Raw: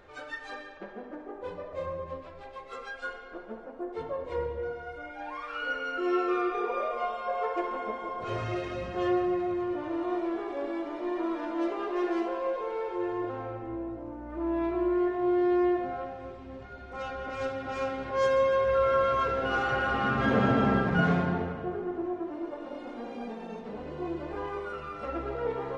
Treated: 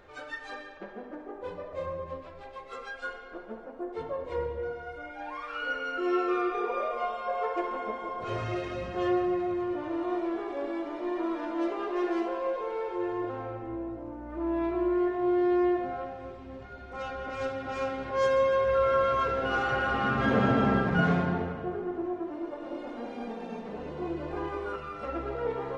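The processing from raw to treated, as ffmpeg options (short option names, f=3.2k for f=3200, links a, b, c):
-filter_complex "[0:a]asettb=1/sr,asplit=3[a][b][c];[a]atrim=end=22.324[d];[b]atrim=start=22.32:end=24.76,asetpts=PTS-STARTPTS,afade=t=in:d=0.004:c=qsin,afade=t=out:st=2.436:d=0.004:c=qsin,aecho=1:1:312:0.501,atrim=end_sample=107604[e];[c]atrim=start=24.756[f];[d][e]acrossfade=d=0.004:c1=hsin:c2=qsin[g];[g][f]acrossfade=d=0.004:c1=qsin:c2=hsin"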